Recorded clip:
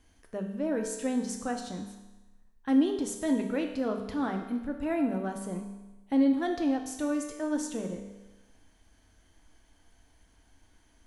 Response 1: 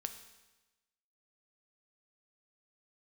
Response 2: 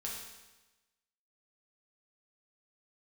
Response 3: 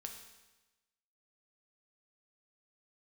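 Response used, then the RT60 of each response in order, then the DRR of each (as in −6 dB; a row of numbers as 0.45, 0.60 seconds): 3; 1.1, 1.1, 1.1 seconds; 7.5, −4.0, 3.0 decibels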